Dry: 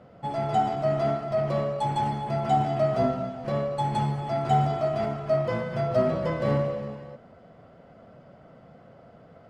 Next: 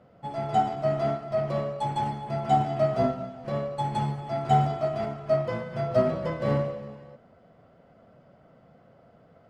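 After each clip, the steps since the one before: upward expander 1.5:1, over -32 dBFS; gain +1.5 dB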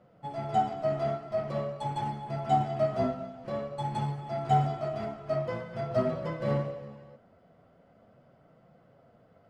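flange 0.46 Hz, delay 5.4 ms, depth 7 ms, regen -49%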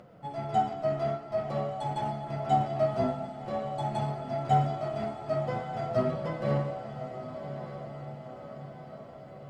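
upward compressor, threshold -46 dBFS; diffused feedback echo 1.175 s, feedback 57%, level -10 dB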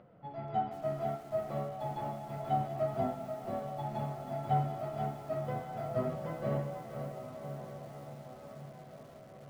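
air absorption 250 m; lo-fi delay 0.483 s, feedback 35%, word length 8-bit, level -8 dB; gain -5.5 dB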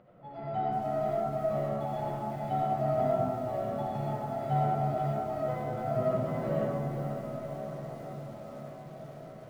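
digital reverb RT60 2.1 s, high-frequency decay 0.25×, pre-delay 35 ms, DRR -5 dB; gain -2 dB

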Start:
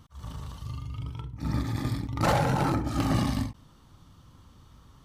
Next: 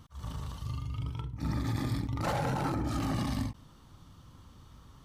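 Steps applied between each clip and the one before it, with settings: limiter -23.5 dBFS, peak gain reduction 10 dB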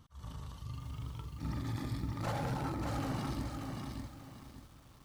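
lo-fi delay 0.586 s, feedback 35%, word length 9-bit, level -3.5 dB; gain -6.5 dB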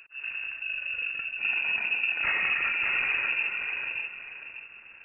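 inverted band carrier 2700 Hz; gain +8.5 dB

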